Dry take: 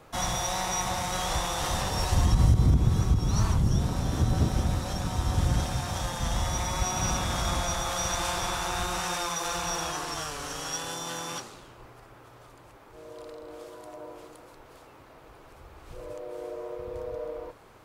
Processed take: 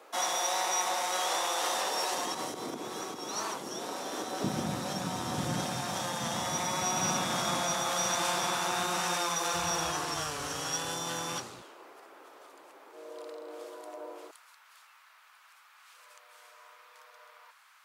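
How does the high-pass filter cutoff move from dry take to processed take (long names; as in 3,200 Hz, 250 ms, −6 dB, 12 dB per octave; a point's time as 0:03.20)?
high-pass filter 24 dB per octave
340 Hz
from 0:04.44 160 Hz
from 0:09.54 72 Hz
from 0:11.62 310 Hz
from 0:14.31 1,200 Hz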